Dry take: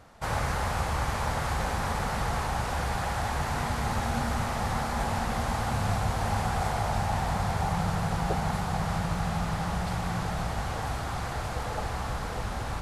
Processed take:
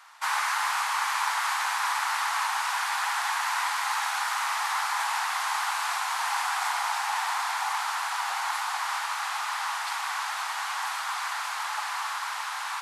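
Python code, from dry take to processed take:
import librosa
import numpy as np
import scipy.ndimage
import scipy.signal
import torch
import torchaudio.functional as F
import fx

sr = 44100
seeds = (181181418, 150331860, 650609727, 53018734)

y = scipy.signal.sosfilt(scipy.signal.ellip(4, 1.0, 80, 940.0, 'highpass', fs=sr, output='sos'), x)
y = y * librosa.db_to_amplitude(7.5)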